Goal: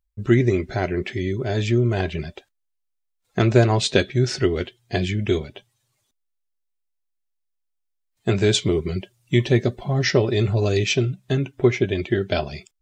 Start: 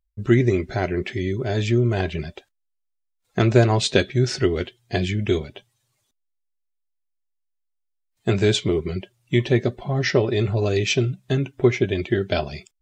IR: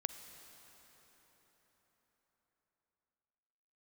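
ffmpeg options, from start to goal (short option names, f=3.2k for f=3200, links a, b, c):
-filter_complex "[0:a]asettb=1/sr,asplit=3[a][b][c];[a]atrim=end=8.534[d];[b]atrim=start=8.53:end=10.84,asetpts=PTS-STARTPTS,afade=t=in:d=0.004:c=qsin,afade=t=out:st=2.306:d=0.004:c=qsin,bass=f=250:g=2,treble=f=4k:g=5[e];[c]atrim=start=10.836[f];[d][e]acrossfade=d=0.004:c1=hsin:c2=qsin[g];[g][f]acrossfade=d=0.004:c1=qsin:c2=hsin"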